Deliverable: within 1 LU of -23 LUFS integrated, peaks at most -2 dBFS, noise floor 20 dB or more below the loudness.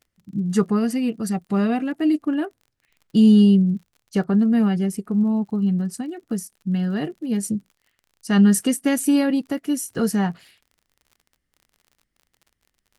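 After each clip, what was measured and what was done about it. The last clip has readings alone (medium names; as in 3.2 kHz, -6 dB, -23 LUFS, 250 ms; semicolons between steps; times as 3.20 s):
tick rate 46 per s; loudness -21.0 LUFS; peak level -6.0 dBFS; loudness target -23.0 LUFS
-> de-click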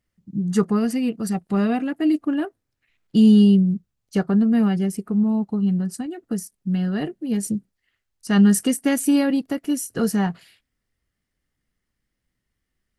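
tick rate 0.15 per s; loudness -21.0 LUFS; peak level -6.0 dBFS; loudness target -23.0 LUFS
-> trim -2 dB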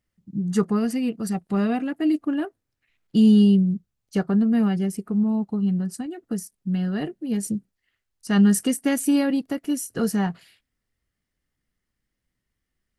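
loudness -23.0 LUFS; peak level -8.0 dBFS; noise floor -81 dBFS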